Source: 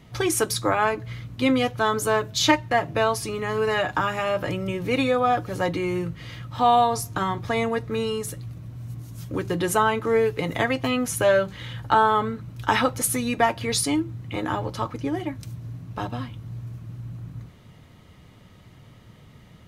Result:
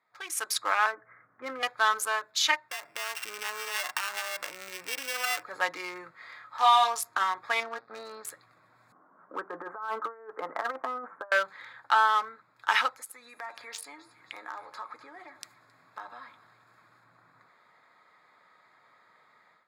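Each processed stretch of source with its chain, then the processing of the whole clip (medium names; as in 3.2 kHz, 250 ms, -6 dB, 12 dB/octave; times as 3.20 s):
0.86–1.63 s: steep low-pass 1.8 kHz + peaking EQ 950 Hz -7 dB 0.4 oct
2.69–5.43 s: sorted samples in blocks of 16 samples + compression 10:1, threshold -25 dBFS
6.11–6.88 s: bass shelf 340 Hz -6.5 dB + doubling 26 ms -3 dB
7.60–8.25 s: partial rectifier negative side -12 dB + cabinet simulation 100–4900 Hz, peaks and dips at 220 Hz +5 dB, 930 Hz -5 dB, 2 kHz -8 dB, 3 kHz -7 dB, 4.5 kHz +6 dB
8.92–11.32 s: elliptic band-pass 190–1400 Hz, stop band 50 dB + compressor with a negative ratio -26 dBFS, ratio -0.5 + tape noise reduction on one side only decoder only
12.89–17.04 s: treble shelf 2.5 kHz +5 dB + compression 5:1, threshold -33 dBFS + two-band feedback delay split 1.4 kHz, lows 104 ms, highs 267 ms, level -14.5 dB
whole clip: local Wiener filter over 15 samples; Chebyshev high-pass 1.4 kHz, order 2; level rider gain up to 14.5 dB; trim -8.5 dB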